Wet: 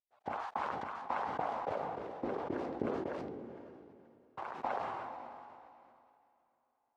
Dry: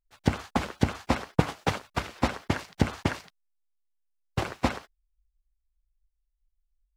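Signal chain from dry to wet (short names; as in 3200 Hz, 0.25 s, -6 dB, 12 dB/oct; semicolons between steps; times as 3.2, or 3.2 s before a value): wah 0.3 Hz 370–1000 Hz, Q 2.9; diffused feedback echo 0.54 s, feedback 40%, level -14.5 dB; sustainer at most 23 dB/s; gain -5.5 dB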